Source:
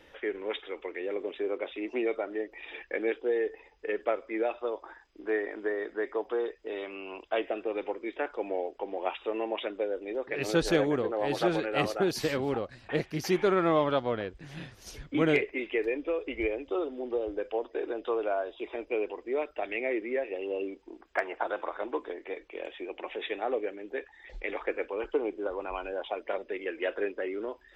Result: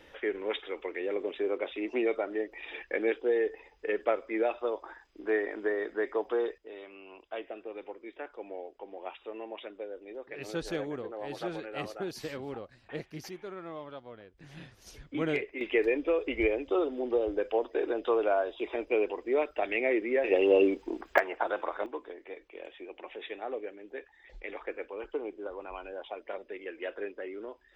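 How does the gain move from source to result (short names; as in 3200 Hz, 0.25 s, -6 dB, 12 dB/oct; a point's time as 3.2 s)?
+1 dB
from 6.58 s -9 dB
from 13.29 s -17 dB
from 14.38 s -5.5 dB
from 15.61 s +3 dB
from 20.24 s +11 dB
from 21.18 s +1 dB
from 21.86 s -6 dB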